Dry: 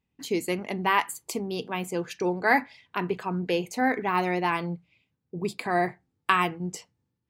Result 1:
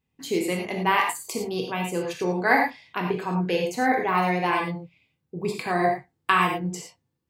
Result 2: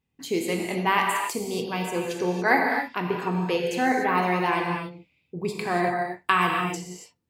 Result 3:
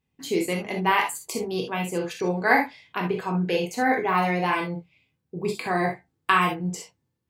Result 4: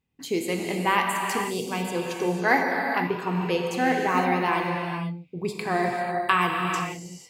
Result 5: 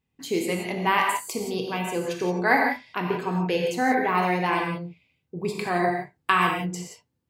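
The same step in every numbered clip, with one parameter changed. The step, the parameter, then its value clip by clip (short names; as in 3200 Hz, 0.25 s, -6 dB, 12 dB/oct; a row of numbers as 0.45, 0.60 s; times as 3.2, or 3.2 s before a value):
non-linear reverb, gate: 130, 310, 90, 520, 200 ms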